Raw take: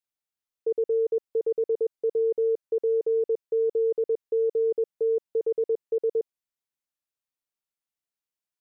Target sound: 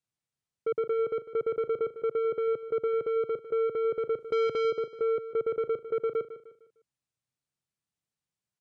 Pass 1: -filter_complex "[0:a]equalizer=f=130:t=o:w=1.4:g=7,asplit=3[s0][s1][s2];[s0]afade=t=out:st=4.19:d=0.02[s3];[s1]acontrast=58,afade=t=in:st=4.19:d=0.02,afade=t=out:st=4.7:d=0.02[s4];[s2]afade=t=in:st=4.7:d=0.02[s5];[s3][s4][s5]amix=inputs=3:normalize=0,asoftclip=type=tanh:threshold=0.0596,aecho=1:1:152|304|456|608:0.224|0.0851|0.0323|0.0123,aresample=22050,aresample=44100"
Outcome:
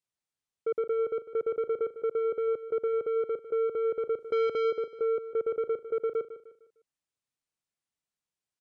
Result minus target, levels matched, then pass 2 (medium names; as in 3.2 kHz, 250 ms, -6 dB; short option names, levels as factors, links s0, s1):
125 Hz band -8.0 dB
-filter_complex "[0:a]equalizer=f=130:t=o:w=1.4:g=17,asplit=3[s0][s1][s2];[s0]afade=t=out:st=4.19:d=0.02[s3];[s1]acontrast=58,afade=t=in:st=4.19:d=0.02,afade=t=out:st=4.7:d=0.02[s4];[s2]afade=t=in:st=4.7:d=0.02[s5];[s3][s4][s5]amix=inputs=3:normalize=0,asoftclip=type=tanh:threshold=0.0596,aecho=1:1:152|304|456|608:0.224|0.0851|0.0323|0.0123,aresample=22050,aresample=44100"